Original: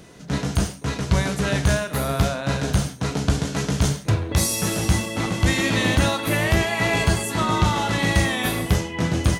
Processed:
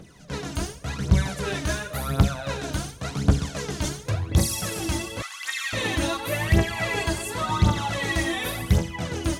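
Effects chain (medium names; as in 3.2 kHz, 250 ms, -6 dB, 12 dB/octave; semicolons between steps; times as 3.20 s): on a send at -10.5 dB: reverberation, pre-delay 3 ms; on the sum: phaser 0.91 Hz, delay 3.4 ms, feedback 65%; 5.22–5.73 s: Chebyshev high-pass 1.3 kHz, order 3; trim -7 dB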